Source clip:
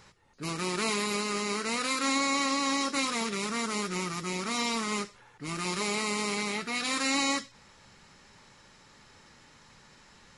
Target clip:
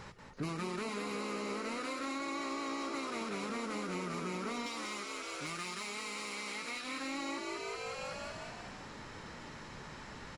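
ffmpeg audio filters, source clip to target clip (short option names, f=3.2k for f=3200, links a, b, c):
-filter_complex "[0:a]asettb=1/sr,asplit=3[a][b][c];[a]atrim=end=4.664[d];[b]atrim=start=4.66:end=6.84,asetpts=PTS-STARTPTS,afade=t=in:d=0.004:c=qsin,afade=t=out:st=2.176:d=0.004:c=qsin,tiltshelf=f=1.1k:g=-7.5[e];[c]atrim=start=6.836[f];[d][e]acrossfade=d=0.004:c1=hsin:c2=qsin[g];[g][f]acrossfade=d=0.004:c1=qsin:c2=hsin,asplit=9[h][i][j][k][l][m][n][o][p];[i]adelay=186,afreqshift=60,volume=-5.5dB[q];[j]adelay=372,afreqshift=120,volume=-9.9dB[r];[k]adelay=558,afreqshift=180,volume=-14.4dB[s];[l]adelay=744,afreqshift=240,volume=-18.8dB[t];[m]adelay=930,afreqshift=300,volume=-23.2dB[u];[n]adelay=1116,afreqshift=360,volume=-27.7dB[v];[o]adelay=1302,afreqshift=420,volume=-32.1dB[w];[p]adelay=1488,afreqshift=480,volume=-36.6dB[x];[h][q][r][s][t][u][v][w][x]amix=inputs=9:normalize=0,acompressor=threshold=-42dB:ratio=10,asoftclip=type=tanh:threshold=-36dB,highshelf=f=3k:g=-10.5,volume=9dB"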